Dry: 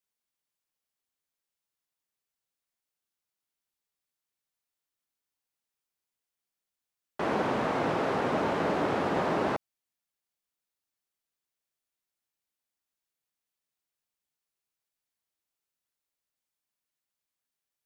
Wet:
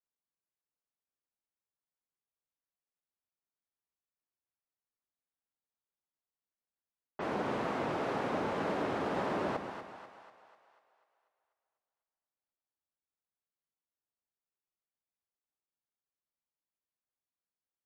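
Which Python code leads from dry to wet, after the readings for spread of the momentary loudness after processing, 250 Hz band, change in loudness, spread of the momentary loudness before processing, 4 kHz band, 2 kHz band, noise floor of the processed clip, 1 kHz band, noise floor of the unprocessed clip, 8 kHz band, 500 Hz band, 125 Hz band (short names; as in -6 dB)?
15 LU, -5.5 dB, -6.0 dB, 5 LU, -5.5 dB, -5.5 dB, under -85 dBFS, -5.5 dB, under -85 dBFS, -6.0 dB, -5.5 dB, -6.0 dB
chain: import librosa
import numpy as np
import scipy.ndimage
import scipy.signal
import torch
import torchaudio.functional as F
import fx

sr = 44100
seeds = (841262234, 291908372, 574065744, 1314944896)

y = fx.env_lowpass(x, sr, base_hz=1400.0, full_db=-27.5)
y = fx.echo_split(y, sr, split_hz=590.0, low_ms=132, high_ms=246, feedback_pct=52, wet_db=-8)
y = fx.wow_flutter(y, sr, seeds[0], rate_hz=2.1, depth_cents=44.0)
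y = F.gain(torch.from_numpy(y), -6.5).numpy()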